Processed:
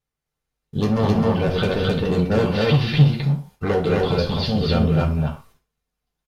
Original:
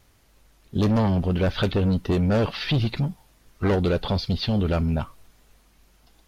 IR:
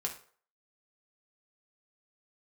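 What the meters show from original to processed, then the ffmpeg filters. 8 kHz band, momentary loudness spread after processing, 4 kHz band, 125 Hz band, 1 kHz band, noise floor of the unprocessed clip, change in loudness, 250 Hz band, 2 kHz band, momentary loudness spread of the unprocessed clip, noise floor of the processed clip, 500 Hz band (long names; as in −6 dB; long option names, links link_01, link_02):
can't be measured, 8 LU, +3.5 dB, +4.5 dB, +4.5 dB, −59 dBFS, +4.0 dB, +3.0 dB, +4.5 dB, 7 LU, −83 dBFS, +5.5 dB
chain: -filter_complex "[0:a]agate=range=-26dB:threshold=-48dB:ratio=16:detection=peak,aecho=1:1:204.1|262.4:0.316|0.891[link_01];[1:a]atrim=start_sample=2205,afade=type=out:start_time=0.21:duration=0.01,atrim=end_sample=9702[link_02];[link_01][link_02]afir=irnorm=-1:irlink=0"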